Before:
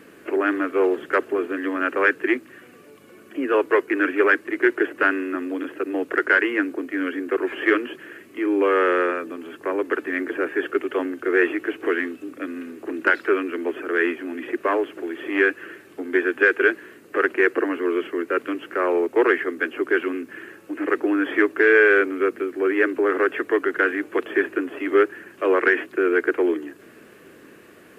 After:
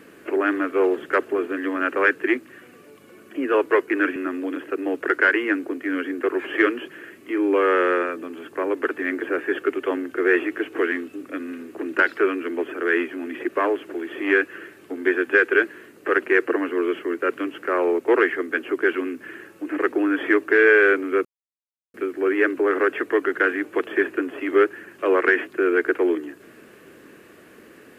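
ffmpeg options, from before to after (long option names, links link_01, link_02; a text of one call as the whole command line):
ffmpeg -i in.wav -filter_complex "[0:a]asplit=3[link_01][link_02][link_03];[link_01]atrim=end=4.162[link_04];[link_02]atrim=start=5.238:end=22.33,asetpts=PTS-STARTPTS,afade=type=out:start_time=17.088:duration=0.004:curve=hsin,apad=pad_dur=0.69[link_05];[link_03]atrim=start=22.33,asetpts=PTS-STARTPTS,afade=type=in:duration=0.004:curve=hsin[link_06];[link_05][link_06]concat=n=2:v=0:a=1[link_07];[link_04][link_07]acrossfade=duration=0.004:curve1=hsin:curve2=hsin" out.wav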